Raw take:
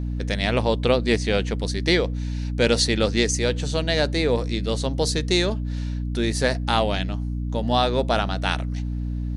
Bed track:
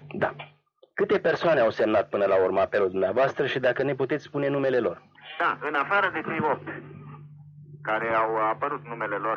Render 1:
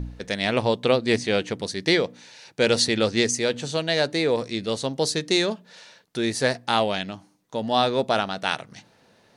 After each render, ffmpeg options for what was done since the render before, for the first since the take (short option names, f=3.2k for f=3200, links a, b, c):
-af "bandreject=f=60:t=h:w=4,bandreject=f=120:t=h:w=4,bandreject=f=180:t=h:w=4,bandreject=f=240:t=h:w=4,bandreject=f=300:t=h:w=4"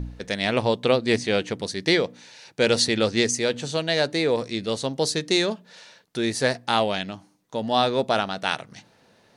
-af anull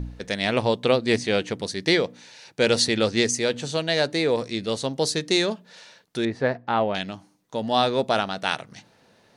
-filter_complex "[0:a]asettb=1/sr,asplit=3[a][b][c];[a]atrim=end=6.254[d];[b]atrim=start=6.25:end=6.95,asetpts=PTS-STARTPTS,afade=t=in:d=0.004:c=qsin,afade=t=out:st=0.696:d=0.004:c=qsin,lowpass=1.7k[e];[c]atrim=start=6.946[f];[d][e]acrossfade=d=0.004:c1=hsin:c2=qsin[g];[g][f]acrossfade=d=0.004:c1=qsin:c2=hsin"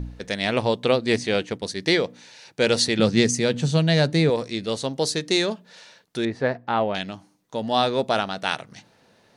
-filter_complex "[0:a]asettb=1/sr,asplit=3[a][b][c];[a]atrim=end=1.344[d];[b]atrim=start=1.34:end=1.82,asetpts=PTS-STARTPTS,afade=t=in:d=0.004:c=qsin,afade=t=out:st=0.476:d=0.004:c=qsin,agate=range=-33dB:threshold=-33dB:ratio=3:release=100:detection=peak[e];[c]atrim=start=1.816[f];[d][e]acrossfade=d=0.004:c1=hsin:c2=qsin[g];[g][f]acrossfade=d=0.004:c1=qsin:c2=hsin,asettb=1/sr,asplit=3[h][i][j];[h]atrim=end=2.994[k];[i]atrim=start=2.99:end=4.3,asetpts=PTS-STARTPTS,afade=t=in:d=0.004:c=qsin,afade=t=out:st=1.306:d=0.004:c=qsin,equalizer=f=160:w=1.5:g=14.5[l];[j]atrim=start=4.296[m];[k][l]acrossfade=d=0.004:c1=hsin:c2=qsin[n];[n][m]acrossfade=d=0.004:c1=qsin:c2=hsin"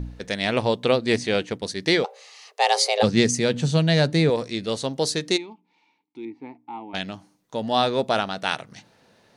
-filter_complex "[0:a]asplit=3[a][b][c];[a]afade=t=out:st=2.03:d=0.02[d];[b]afreqshift=300,afade=t=in:st=2.03:d=0.02,afade=t=out:st=3.02:d=0.02[e];[c]afade=t=in:st=3.02:d=0.02[f];[d][e][f]amix=inputs=3:normalize=0,asplit=3[g][h][i];[g]afade=t=out:st=5.36:d=0.02[j];[h]asplit=3[k][l][m];[k]bandpass=f=300:t=q:w=8,volume=0dB[n];[l]bandpass=f=870:t=q:w=8,volume=-6dB[o];[m]bandpass=f=2.24k:t=q:w=8,volume=-9dB[p];[n][o][p]amix=inputs=3:normalize=0,afade=t=in:st=5.36:d=0.02,afade=t=out:st=6.93:d=0.02[q];[i]afade=t=in:st=6.93:d=0.02[r];[j][q][r]amix=inputs=3:normalize=0"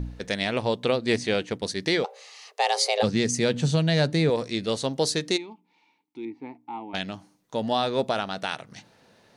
-af "alimiter=limit=-12dB:level=0:latency=1:release=266"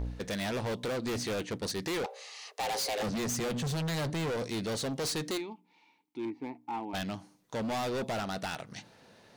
-af "volume=31dB,asoftclip=hard,volume=-31dB"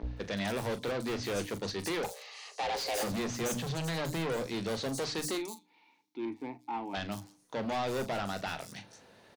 -filter_complex "[0:a]asplit=2[a][b];[b]adelay=40,volume=-12.5dB[c];[a][c]amix=inputs=2:normalize=0,acrossover=split=170|5700[d][e][f];[d]adelay=30[g];[f]adelay=170[h];[g][e][h]amix=inputs=3:normalize=0"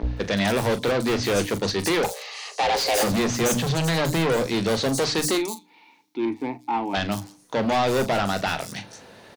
-af "volume=11.5dB"